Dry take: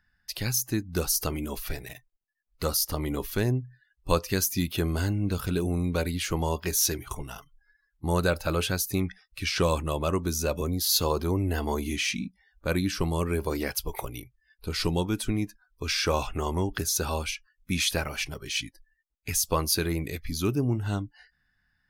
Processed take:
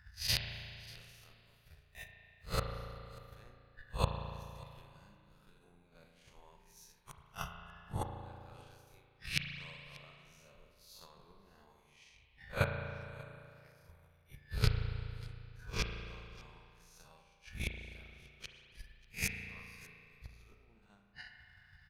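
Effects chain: time blur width 0.147 s; flipped gate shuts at -30 dBFS, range -35 dB; tilt -3.5 dB/oct; spectral gate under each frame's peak -10 dB weak; transient shaper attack +10 dB, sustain -8 dB; passive tone stack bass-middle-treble 10-0-10; echo 0.588 s -22 dB; spring tank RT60 2.4 s, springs 35 ms, chirp 30 ms, DRR 4 dB; gain +16 dB

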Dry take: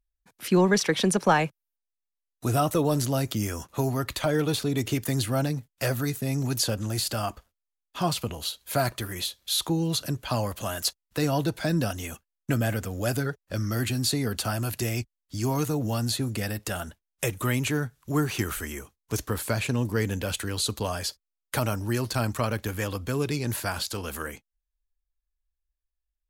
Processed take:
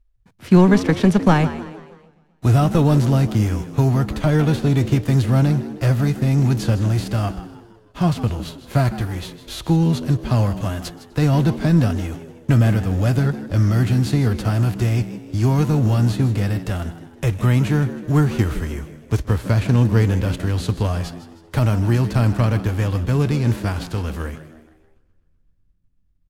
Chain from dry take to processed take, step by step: spectral whitening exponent 0.6; RIAA curve playback; on a send: frequency-shifting echo 0.157 s, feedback 42%, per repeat +80 Hz, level -14 dB; on the sum: warbling echo 0.127 s, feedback 63%, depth 108 cents, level -24 dB; gain +2 dB

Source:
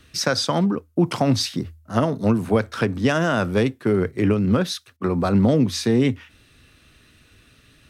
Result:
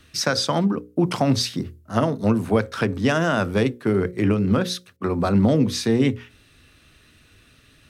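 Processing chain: notches 60/120/180/240/300/360/420/480/540 Hz

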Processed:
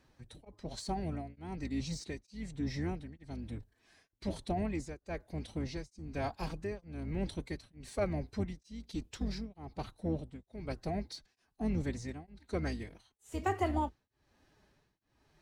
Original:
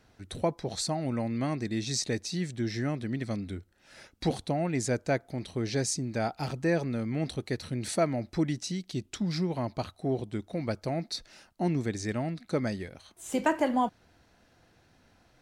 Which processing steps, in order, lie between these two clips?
octaver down 2 oct, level -3 dB; de-esser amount 75%; formant-preserving pitch shift +3.5 st; beating tremolo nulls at 1.1 Hz; gain -5 dB

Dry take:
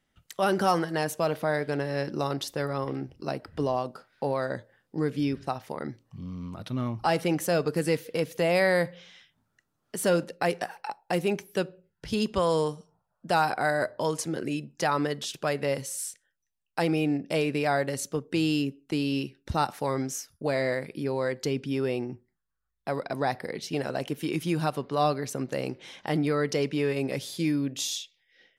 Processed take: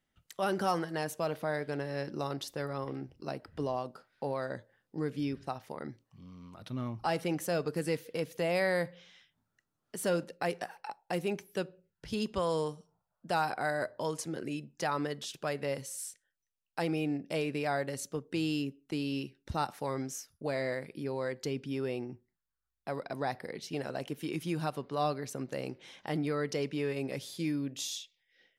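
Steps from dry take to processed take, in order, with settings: 6.04–6.62 low shelf 400 Hz -8 dB; gain -6.5 dB

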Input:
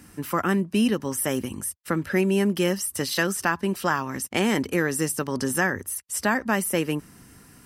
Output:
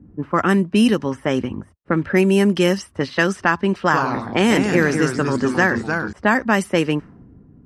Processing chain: LPF 10000 Hz 12 dB/oct; low-pass opened by the level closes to 310 Hz, open at -18 dBFS; 3.78–6.13 echoes that change speed 84 ms, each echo -2 st, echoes 3, each echo -6 dB; gain +6.5 dB

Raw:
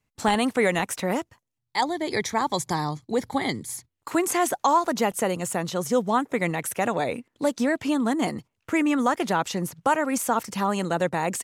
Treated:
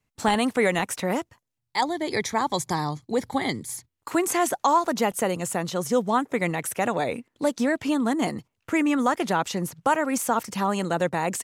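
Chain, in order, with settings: wow and flutter 16 cents

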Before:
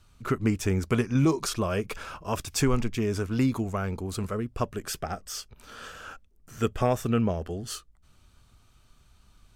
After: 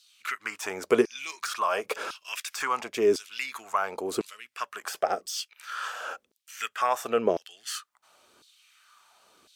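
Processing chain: in parallel at -2.5 dB: compressor, threshold -32 dBFS, peak gain reduction 13.5 dB; on the sum: LFO high-pass saw down 0.95 Hz 330–4200 Hz; de-esser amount 60%

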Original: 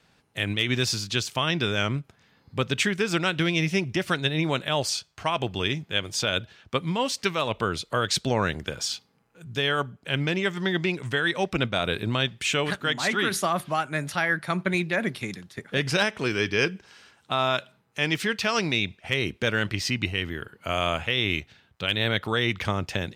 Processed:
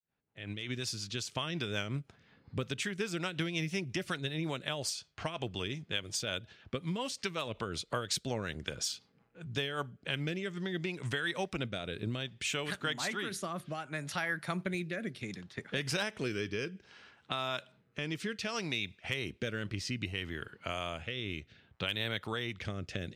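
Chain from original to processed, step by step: opening faded in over 1.68 s; high shelf 9300 Hz +11 dB; compressor 3:1, threshold -33 dBFS, peak gain reduction 11.5 dB; rotary speaker horn 5.5 Hz, later 0.65 Hz, at 9.49; low-pass opened by the level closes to 2500 Hz, open at -31 dBFS

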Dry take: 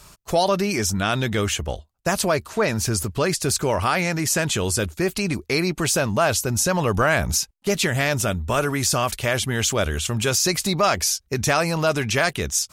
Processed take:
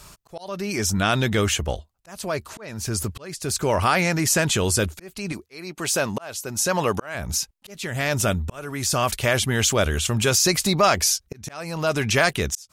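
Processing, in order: 5.32–7.15 HPF 280 Hz 6 dB/oct; auto swell 0.602 s; gain +1.5 dB

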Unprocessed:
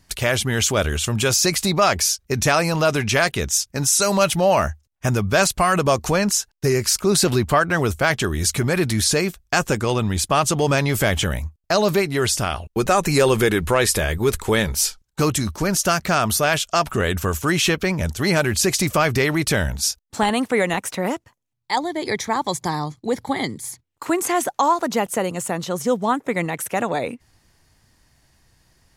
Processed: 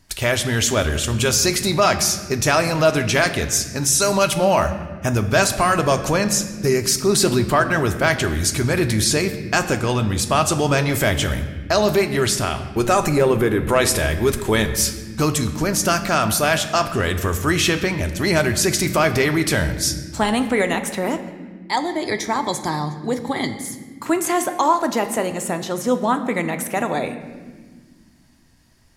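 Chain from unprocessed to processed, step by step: 13.09–13.69 bell 6000 Hz -13 dB 2.7 oct; reverb, pre-delay 3 ms, DRR 7 dB

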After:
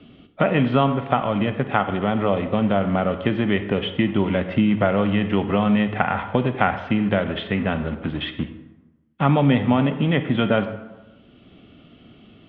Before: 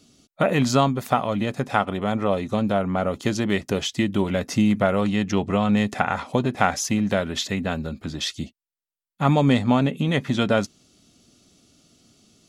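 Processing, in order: in parallel at -9 dB: bit-crush 5-bit; on the sum: Chebyshev low-pass 3200 Hz, order 5; reverb RT60 0.90 s, pre-delay 32 ms, DRR 10 dB; three-band squash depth 40%; gain -1 dB

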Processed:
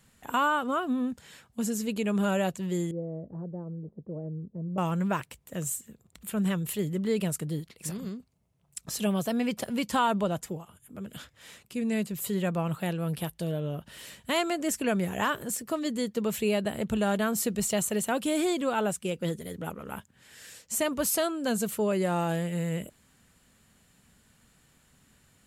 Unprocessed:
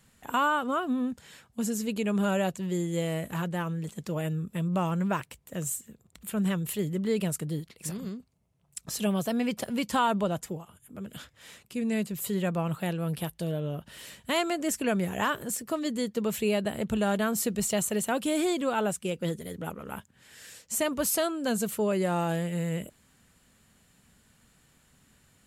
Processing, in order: 2.91–4.78 ladder low-pass 660 Hz, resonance 25%

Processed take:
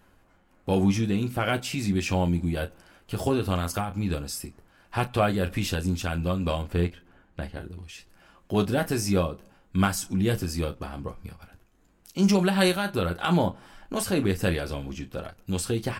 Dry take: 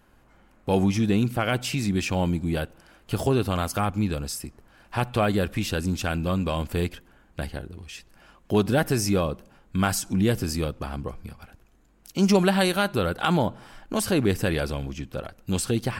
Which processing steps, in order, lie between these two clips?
6.62–7.57 high shelf 5100 Hz -11 dB; early reflections 11 ms -8 dB, 35 ms -11.5 dB; noise-modulated level, depth 65%

